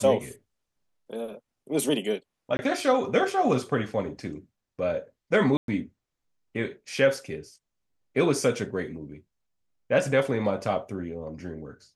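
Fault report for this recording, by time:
2.57–2.59 gap 20 ms
5.57–5.68 gap 0.112 s

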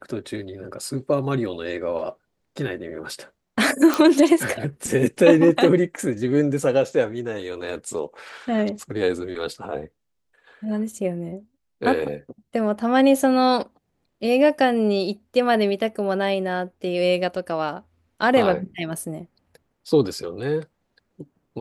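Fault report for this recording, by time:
3.94 pop

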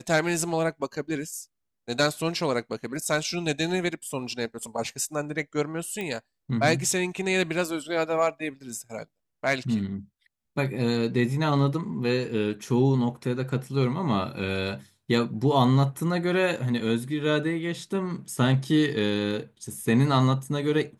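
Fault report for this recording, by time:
6.01 pop -19 dBFS

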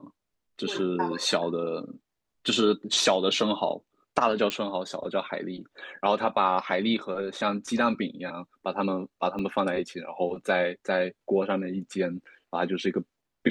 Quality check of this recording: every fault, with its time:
4.5 pop -13 dBFS
9.39 gap 3.4 ms

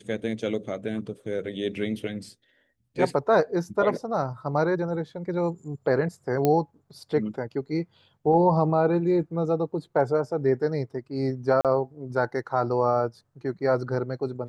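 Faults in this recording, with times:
6.45 pop -10 dBFS
11.61–11.65 gap 37 ms

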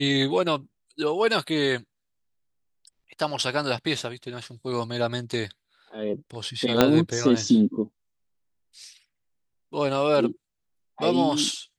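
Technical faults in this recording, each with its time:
6.81 pop -2 dBFS

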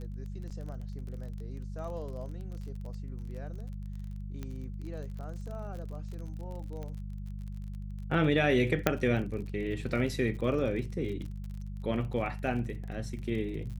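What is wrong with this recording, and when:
crackle 39/s -40 dBFS
hum 50 Hz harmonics 4 -39 dBFS
0.5–0.51 gap 6.6 ms
4.43 pop -26 dBFS
6.83 pop -29 dBFS
8.87 pop -10 dBFS

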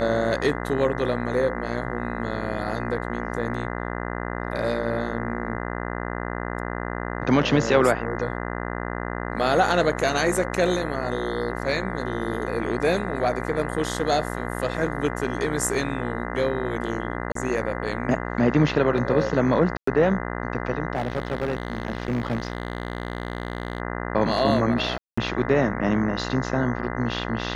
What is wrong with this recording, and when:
buzz 60 Hz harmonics 34 -30 dBFS
17.32–17.35 gap 33 ms
19.77–19.87 gap 0.104 s
20.95–23.8 clipped -20.5 dBFS
24.98–25.18 gap 0.195 s

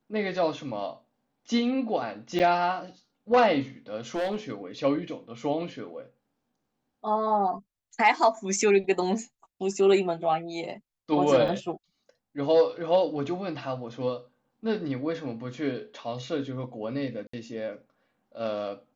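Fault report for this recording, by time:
2.39–2.4 gap 7.8 ms
4.15–4.52 clipped -24.5 dBFS
11.48 gap 3.9 ms
17.27–17.33 gap 64 ms

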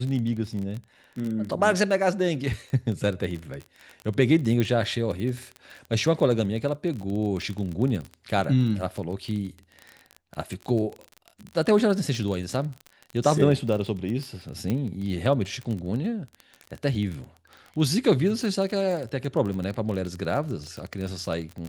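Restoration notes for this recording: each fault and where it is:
crackle 24/s -30 dBFS
4.6 pop -14 dBFS
14.7 pop -15 dBFS

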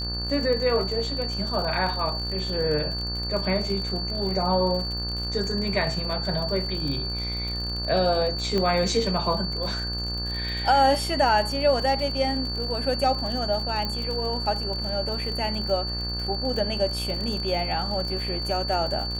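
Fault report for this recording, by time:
buzz 60 Hz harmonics 30 -32 dBFS
crackle 61/s -31 dBFS
tone 4500 Hz -30 dBFS
8.58 pop -14 dBFS
13.85 pop -16 dBFS

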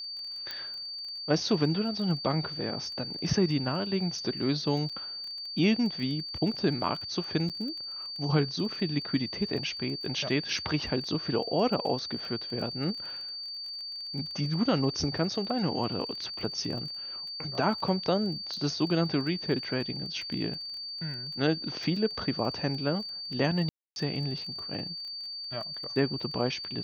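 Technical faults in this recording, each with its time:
crackle 17/s -38 dBFS
tone 4600 Hz -36 dBFS
0.51 pop -21 dBFS
4.89–4.9 gap 6 ms
7.49–7.5 gap 7.8 ms
23.69–23.96 gap 0.271 s

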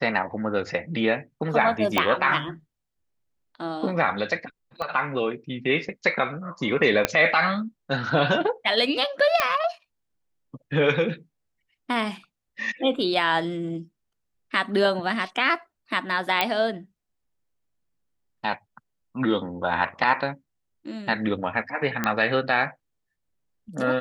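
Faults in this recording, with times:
1.98 pop -6 dBFS
4.82 pop -18 dBFS
7.05 pop -3 dBFS
9.4 pop -5 dBFS
16.41 pop -6 dBFS
22.04 pop -9 dBFS

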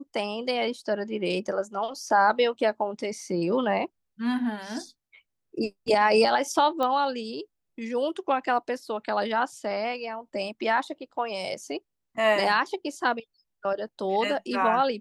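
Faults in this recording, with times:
6.83 pop -16 dBFS

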